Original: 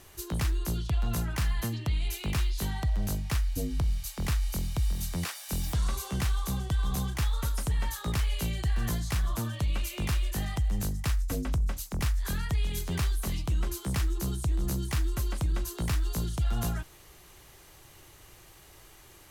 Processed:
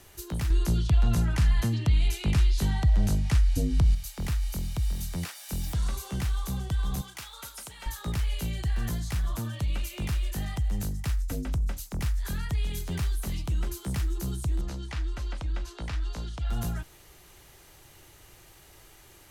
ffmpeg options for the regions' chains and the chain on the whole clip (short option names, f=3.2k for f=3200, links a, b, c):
-filter_complex "[0:a]asettb=1/sr,asplit=3[a][b][c];[a]atrim=end=0.504[d];[b]atrim=start=0.5:end=3.95,asetpts=PTS-STARTPTS,afade=t=in:d=0.004:c=qsin,afade=t=out:st=3.446:d=0.004:c=qsin,lowpass=10k,acontrast=69[e];[c]atrim=start=3.946[f];[d][e]acrossfade=d=0.004:c1=hsin:c2=qsin[g];[g][f]acrossfade=d=0.004:c1=qsin:c2=hsin,asettb=1/sr,asplit=3[h][i][j];[h]atrim=end=7.014[k];[i]atrim=start=7.01:end=7.86,asetpts=PTS-STARTPTS,afade=t=in:d=0.004:c=qsin,afade=t=out:st=0.846:d=0.004:c=qsin,highpass=f=1.1k:p=1,bandreject=f=1.8k:w=12[l];[j]atrim=start=7.856[m];[k][l]acrossfade=d=0.004:c1=hsin:c2=qsin[n];[n][m]acrossfade=d=0.004:c1=qsin:c2=hsin,asettb=1/sr,asplit=3[o][p][q];[o]atrim=end=14.614[r];[p]atrim=start=14.61:end=16.5,asetpts=PTS-STARTPTS,afade=t=in:d=0.004:c=qsin,afade=t=out:st=1.886:d=0.004:c=qsin,lowpass=4.6k,equalizer=f=140:t=o:w=1.6:g=-9.5,bandreject=f=380:w=5.6[s];[q]atrim=start=16.496[t];[r][s]acrossfade=d=0.004:c1=hsin:c2=qsin[u];[u][t]acrossfade=d=0.004:c1=qsin:c2=hsin,bandreject=f=1.1k:w=15,acrossover=split=270[v][w];[w]acompressor=threshold=-39dB:ratio=2[x];[v][x]amix=inputs=2:normalize=0"